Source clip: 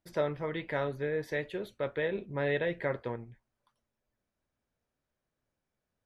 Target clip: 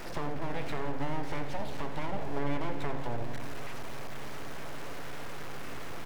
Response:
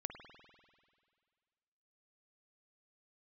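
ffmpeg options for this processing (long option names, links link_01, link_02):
-filter_complex "[0:a]aeval=exprs='val(0)+0.5*0.0178*sgn(val(0))':channel_layout=same,acrossover=split=2800[link_01][link_02];[link_02]acompressor=threshold=-57dB:ratio=4:attack=1:release=60[link_03];[link_01][link_03]amix=inputs=2:normalize=0,equalizer=frequency=5200:width=1.5:gain=3.5,acrossover=split=360[link_04][link_05];[link_05]acompressor=threshold=-40dB:ratio=10[link_06];[link_04][link_06]amix=inputs=2:normalize=0,aeval=exprs='abs(val(0))':channel_layout=same,asplit=8[link_07][link_08][link_09][link_10][link_11][link_12][link_13][link_14];[link_08]adelay=84,afreqshift=-140,volume=-13dB[link_15];[link_09]adelay=168,afreqshift=-280,volume=-17dB[link_16];[link_10]adelay=252,afreqshift=-420,volume=-21dB[link_17];[link_11]adelay=336,afreqshift=-560,volume=-25dB[link_18];[link_12]adelay=420,afreqshift=-700,volume=-29.1dB[link_19];[link_13]adelay=504,afreqshift=-840,volume=-33.1dB[link_20];[link_14]adelay=588,afreqshift=-980,volume=-37.1dB[link_21];[link_07][link_15][link_16][link_17][link_18][link_19][link_20][link_21]amix=inputs=8:normalize=0,asplit=2[link_22][link_23];[1:a]atrim=start_sample=2205,asetrate=36162,aresample=44100[link_24];[link_23][link_24]afir=irnorm=-1:irlink=0,volume=5dB[link_25];[link_22][link_25]amix=inputs=2:normalize=0,volume=-4dB"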